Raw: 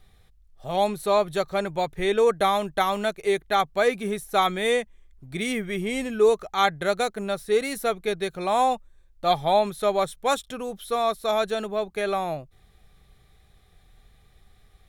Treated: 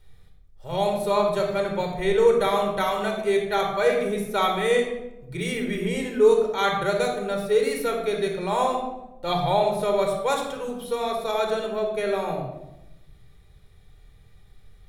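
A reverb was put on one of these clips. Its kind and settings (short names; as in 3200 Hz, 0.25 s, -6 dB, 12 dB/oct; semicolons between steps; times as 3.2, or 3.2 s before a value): shoebox room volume 3300 m³, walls furnished, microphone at 4.6 m; gain -4 dB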